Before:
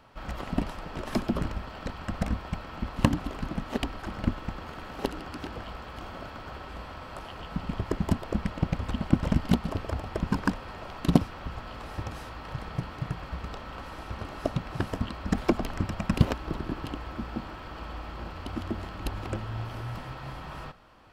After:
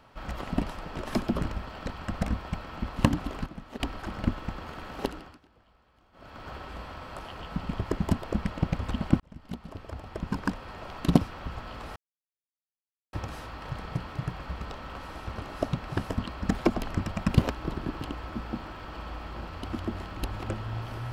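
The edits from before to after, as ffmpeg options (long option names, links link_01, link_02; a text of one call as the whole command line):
ffmpeg -i in.wav -filter_complex "[0:a]asplit=7[link_01][link_02][link_03][link_04][link_05][link_06][link_07];[link_01]atrim=end=3.462[link_08];[link_02]atrim=start=3.458:end=3.802,asetpts=PTS-STARTPTS,volume=-9.5dB[link_09];[link_03]atrim=start=3.798:end=5.4,asetpts=PTS-STARTPTS,afade=type=out:start_time=1.222:duration=0.38:silence=0.0668344[link_10];[link_04]atrim=start=5.4:end=6.12,asetpts=PTS-STARTPTS,volume=-23.5dB[link_11];[link_05]atrim=start=6.12:end=9.2,asetpts=PTS-STARTPTS,afade=type=in:duration=0.38:silence=0.0668344,afade=type=out:start_time=3.076:duration=0.004:curve=hsin[link_12];[link_06]atrim=start=9.2:end=11.96,asetpts=PTS-STARTPTS,afade=type=in:duration=1.76,afade=type=out:start_time=2.756:duration=0.004:curve=hsin,apad=pad_dur=1.17[link_13];[link_07]atrim=start=11.96,asetpts=PTS-STARTPTS,afade=type=in:duration=0.004:curve=hsin[link_14];[link_08][link_09]acrossfade=duration=0.004:curve1=hsin:curve2=hsin[link_15];[link_10][link_11][link_12][link_13][link_14]concat=n=5:v=0:a=1[link_16];[link_15][link_16]acrossfade=duration=0.004:curve1=hsin:curve2=hsin" out.wav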